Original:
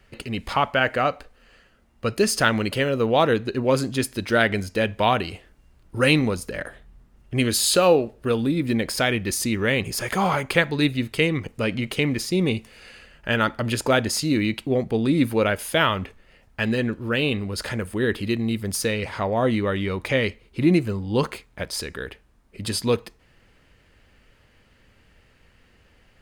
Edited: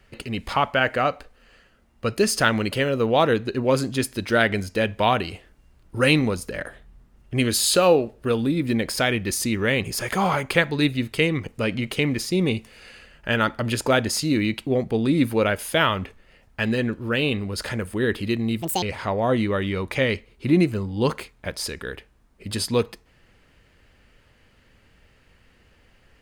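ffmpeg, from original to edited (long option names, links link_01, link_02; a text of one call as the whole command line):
ffmpeg -i in.wav -filter_complex "[0:a]asplit=3[link_01][link_02][link_03];[link_01]atrim=end=18.624[link_04];[link_02]atrim=start=18.62:end=18.96,asetpts=PTS-STARTPTS,asetrate=73647,aresample=44100,atrim=end_sample=8978,asetpts=PTS-STARTPTS[link_05];[link_03]atrim=start=18.956[link_06];[link_04][link_05]acrossfade=duration=0.004:curve1=hsin:curve2=hsin[link_07];[link_07][link_06]acrossfade=duration=0.004:curve1=hsin:curve2=hsin" out.wav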